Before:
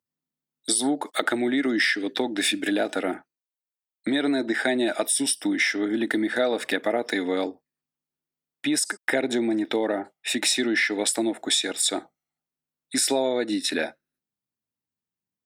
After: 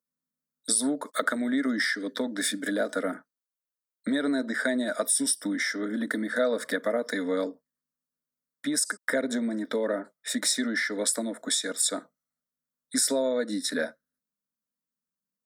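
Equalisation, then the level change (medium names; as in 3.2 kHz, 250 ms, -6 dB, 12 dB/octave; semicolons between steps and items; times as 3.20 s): static phaser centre 530 Hz, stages 8; 0.0 dB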